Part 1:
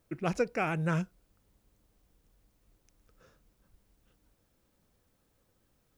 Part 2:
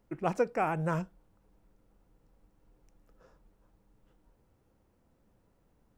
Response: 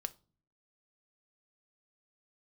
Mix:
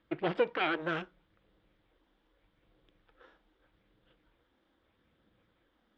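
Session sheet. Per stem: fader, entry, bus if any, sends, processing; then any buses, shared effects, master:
+3.0 dB, 0.00 s, send −9 dB, lower of the sound and its delayed copy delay 0.6 ms; elliptic band-pass filter 300–3,600 Hz; brickwall limiter −28 dBFS, peak gain reduction 7.5 dB
−5.0 dB, 0.00 s, send −8 dB, high-pass filter 71 Hz 6 dB per octave; all-pass phaser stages 6, 0.81 Hz, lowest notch 110–1,900 Hz; parametric band 2,300 Hz +14 dB 0.4 octaves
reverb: on, pre-delay 4 ms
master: low-pass filter 5,000 Hz 24 dB per octave; notch filter 410 Hz, Q 12

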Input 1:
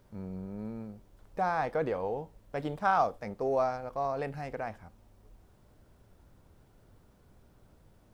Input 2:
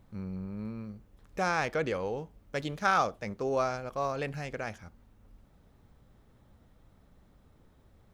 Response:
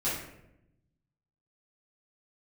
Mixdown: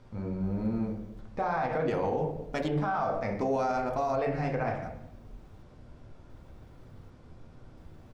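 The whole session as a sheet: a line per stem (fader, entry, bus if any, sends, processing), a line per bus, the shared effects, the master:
+2.0 dB, 0.00 s, send −5 dB, low-pass filter 5,500 Hz 12 dB per octave; brickwall limiter −25.5 dBFS, peak gain reduction 11 dB
0.0 dB, 1.6 ms, polarity flipped, no send, gate pattern "...xxxxxx.." 112 BPM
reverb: on, RT60 0.85 s, pre-delay 4 ms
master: brickwall limiter −21 dBFS, peak gain reduction 7.5 dB

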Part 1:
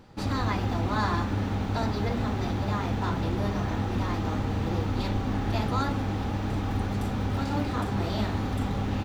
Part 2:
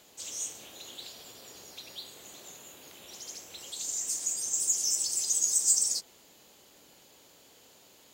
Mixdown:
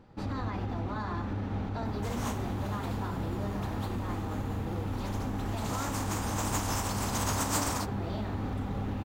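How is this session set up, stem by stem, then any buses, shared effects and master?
−3.5 dB, 0.00 s, no send, brickwall limiter −21.5 dBFS, peak gain reduction 7.5 dB
−1.0 dB, 1.85 s, no send, compressing power law on the bin magnitudes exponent 0.39; parametric band 1,000 Hz +13.5 dB 1.3 octaves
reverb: not used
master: high-shelf EQ 2,800 Hz −10 dB

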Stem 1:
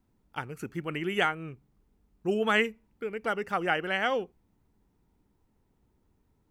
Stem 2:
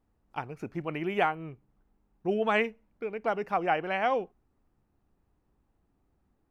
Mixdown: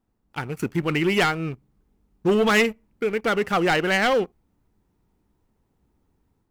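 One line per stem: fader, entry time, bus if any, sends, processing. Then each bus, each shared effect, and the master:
−3.0 dB, 0.00 s, no send, leveller curve on the samples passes 2; automatic gain control gain up to 8 dB; soft clipping −11.5 dBFS, distortion −14 dB
−3.0 dB, 0.00 s, no send, no processing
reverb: not used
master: no processing

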